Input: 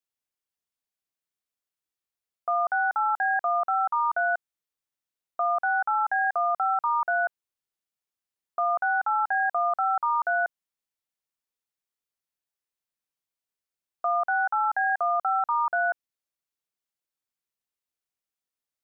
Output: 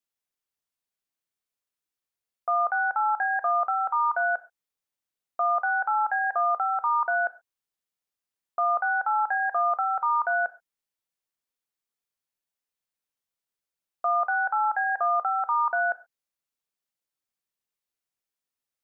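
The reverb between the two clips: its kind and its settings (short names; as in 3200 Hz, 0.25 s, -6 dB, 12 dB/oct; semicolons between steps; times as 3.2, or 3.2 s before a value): non-linear reverb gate 0.15 s falling, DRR 12 dB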